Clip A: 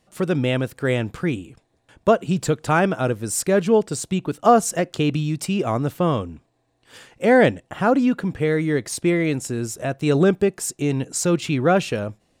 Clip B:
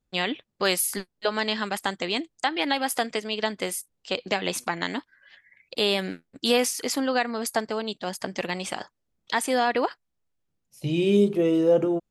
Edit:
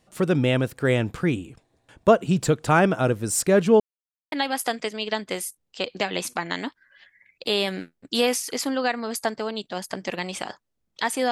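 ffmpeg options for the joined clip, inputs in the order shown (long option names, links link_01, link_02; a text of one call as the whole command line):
ffmpeg -i cue0.wav -i cue1.wav -filter_complex "[0:a]apad=whole_dur=11.31,atrim=end=11.31,asplit=2[link_01][link_02];[link_01]atrim=end=3.8,asetpts=PTS-STARTPTS,afade=type=out:start_time=3.796:duration=0.004:curve=hsin[link_03];[link_02]atrim=start=3.8:end=4.32,asetpts=PTS-STARTPTS,volume=0[link_04];[1:a]atrim=start=2.63:end=9.62,asetpts=PTS-STARTPTS,afade=type=in:duration=0.004:curve=hsin[link_05];[link_03][link_04][link_05]concat=n=3:v=0:a=1" out.wav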